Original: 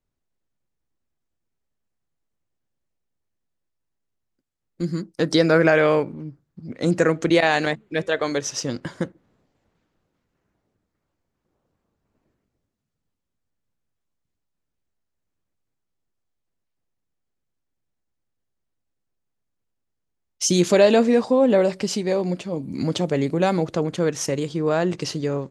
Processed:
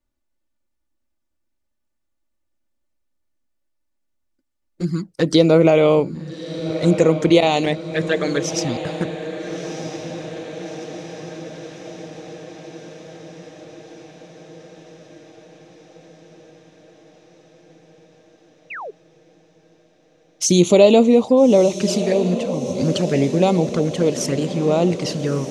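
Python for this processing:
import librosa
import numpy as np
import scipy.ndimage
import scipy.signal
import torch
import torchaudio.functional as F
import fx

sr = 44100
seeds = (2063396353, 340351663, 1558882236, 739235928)

y = fx.env_flanger(x, sr, rest_ms=3.4, full_db=-16.5)
y = fx.echo_diffused(y, sr, ms=1289, feedback_pct=66, wet_db=-11.5)
y = fx.spec_paint(y, sr, seeds[0], shape='fall', start_s=18.7, length_s=0.21, low_hz=370.0, high_hz=2900.0, level_db=-36.0)
y = F.gain(torch.from_numpy(y), 5.0).numpy()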